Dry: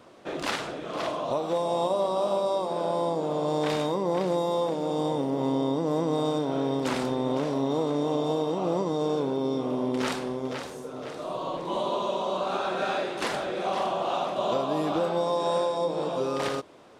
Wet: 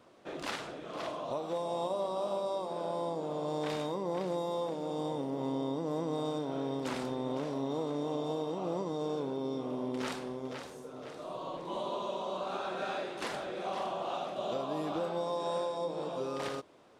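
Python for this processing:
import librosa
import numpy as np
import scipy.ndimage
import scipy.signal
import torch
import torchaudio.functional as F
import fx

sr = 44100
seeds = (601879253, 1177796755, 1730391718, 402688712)

y = fx.peak_eq(x, sr, hz=1000.0, db=-8.0, octaves=0.22, at=(14.17, 14.6))
y = y * librosa.db_to_amplitude(-8.0)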